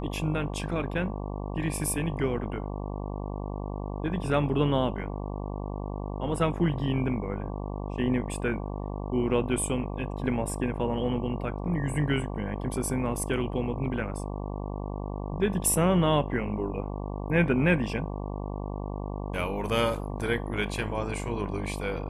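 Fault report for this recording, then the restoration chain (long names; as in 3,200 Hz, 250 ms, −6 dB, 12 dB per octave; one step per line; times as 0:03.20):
mains buzz 50 Hz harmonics 23 −34 dBFS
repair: hum removal 50 Hz, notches 23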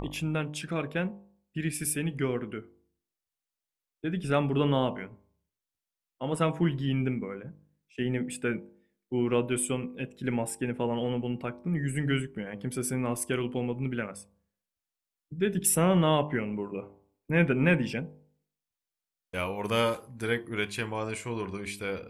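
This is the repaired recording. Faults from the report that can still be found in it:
none of them is left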